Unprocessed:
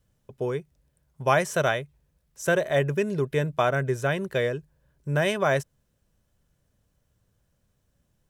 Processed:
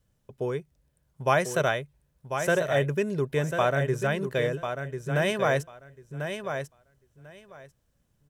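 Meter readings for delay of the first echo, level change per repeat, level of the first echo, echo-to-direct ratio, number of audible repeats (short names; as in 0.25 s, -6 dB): 1.044 s, -16.0 dB, -7.5 dB, -7.5 dB, 2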